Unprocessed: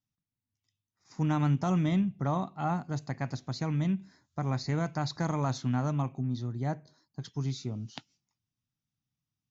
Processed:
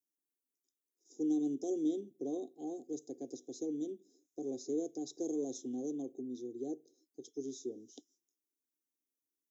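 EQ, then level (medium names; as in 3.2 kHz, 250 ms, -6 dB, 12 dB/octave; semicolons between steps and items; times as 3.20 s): high-pass 300 Hz 24 dB/octave; inverse Chebyshev band-stop 870–2700 Hz, stop band 40 dB; static phaser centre 910 Hz, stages 8; +5.0 dB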